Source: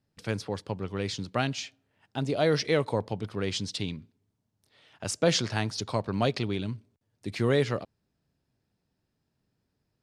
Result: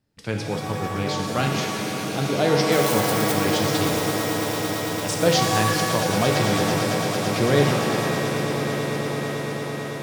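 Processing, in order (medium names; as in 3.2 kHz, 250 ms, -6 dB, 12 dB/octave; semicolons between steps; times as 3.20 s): 2.72–3.32 s: zero-crossing glitches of -20 dBFS; echo with a slow build-up 112 ms, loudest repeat 8, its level -12.5 dB; pitch-shifted reverb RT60 1.6 s, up +7 st, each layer -2 dB, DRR 2.5 dB; trim +3 dB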